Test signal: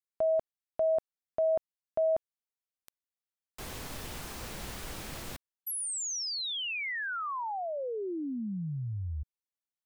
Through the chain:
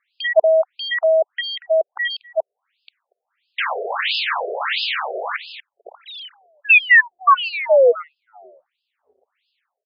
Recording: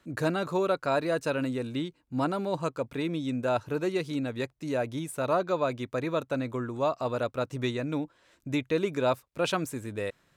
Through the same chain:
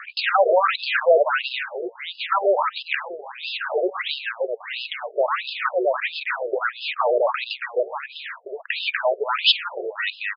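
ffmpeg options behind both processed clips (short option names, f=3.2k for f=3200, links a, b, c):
-filter_complex "[0:a]asplit=2[a][b];[b]aecho=0:1:237:0.133[c];[a][c]amix=inputs=2:normalize=0,asplit=2[d][e];[e]highpass=f=720:p=1,volume=27dB,asoftclip=type=tanh:threshold=-14.5dB[f];[d][f]amix=inputs=2:normalize=0,lowpass=f=3.4k:p=1,volume=-6dB,asubboost=boost=5:cutoff=220,alimiter=level_in=18.5dB:limit=-1dB:release=50:level=0:latency=1,afftfilt=real='re*between(b*sr/1024,490*pow(3700/490,0.5+0.5*sin(2*PI*1.5*pts/sr))/1.41,490*pow(3700/490,0.5+0.5*sin(2*PI*1.5*pts/sr))*1.41)':imag='im*between(b*sr/1024,490*pow(3700/490,0.5+0.5*sin(2*PI*1.5*pts/sr))/1.41,490*pow(3700/490,0.5+0.5*sin(2*PI*1.5*pts/sr))*1.41)':win_size=1024:overlap=0.75,volume=-4dB"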